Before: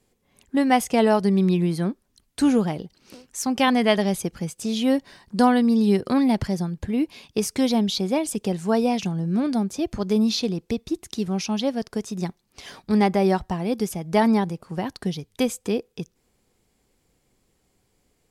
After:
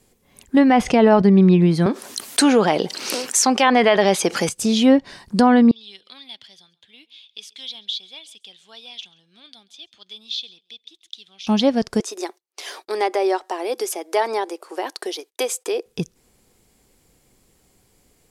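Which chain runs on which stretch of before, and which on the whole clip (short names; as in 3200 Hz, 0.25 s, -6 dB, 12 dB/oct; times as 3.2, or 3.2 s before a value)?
0.56–1.22 notch 7400 Hz + sustainer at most 110 dB/s
1.86–4.49 HPF 430 Hz + fast leveller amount 50%
5.71–11.47 band-pass 3400 Hz, Q 9 + echo 0.136 s -23.5 dB
12–15.86 gate -56 dBFS, range -27 dB + elliptic high-pass 340 Hz, stop band 50 dB + compressor 1.5:1, threshold -31 dBFS
whole clip: treble ducked by the level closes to 2500 Hz, closed at -15 dBFS; high shelf 7900 Hz +7 dB; maximiser +10 dB; gain -3 dB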